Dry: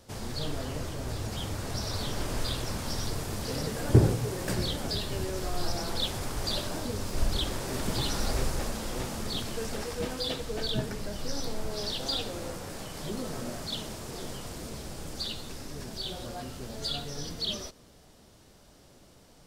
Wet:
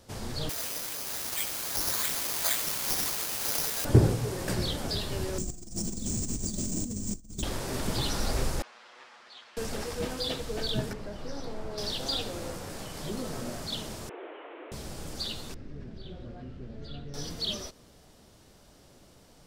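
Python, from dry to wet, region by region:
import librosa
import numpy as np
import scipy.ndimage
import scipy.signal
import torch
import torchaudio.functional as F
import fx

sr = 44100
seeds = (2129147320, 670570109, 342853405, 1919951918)

y = fx.chain(x, sr, fx.highpass(hz=1300.0, slope=6),
    fx.resample_bad(factor=8, down='none', up='zero_stuff'), at=(0.49, 3.85))
y = fx.chain(y, sr, fx.curve_eq(hz=(150.0, 210.0, 520.0, 2100.0, 4000.0, 7200.0, 11000.0), db=(0, 9, -12, -28, -18, 13, -6)),
    fx.over_compress(threshold_db=-33.0, ratio=-0.5),
    fx.resample_bad(factor=3, down='none', up='hold'), at=(5.38, 7.43))
y = fx.chain(y, sr, fx.lower_of_two(delay_ms=8.3),
    fx.highpass(hz=1400.0, slope=12),
    fx.spacing_loss(db_at_10k=33), at=(8.62, 9.57))
y = fx.chain(y, sr, fx.lowpass(hz=1600.0, slope=6),
    fx.low_shelf(hz=240.0, db=-5.0), at=(10.93, 11.78))
y = fx.chain(y, sr, fx.delta_mod(bps=16000, step_db=-48.0),
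    fx.steep_highpass(hz=300.0, slope=72), at=(14.09, 14.72))
y = fx.chain(y, sr, fx.lowpass(hz=1600.0, slope=12),
    fx.peak_eq(hz=910.0, db=-13.5, octaves=1.6), at=(15.54, 17.14))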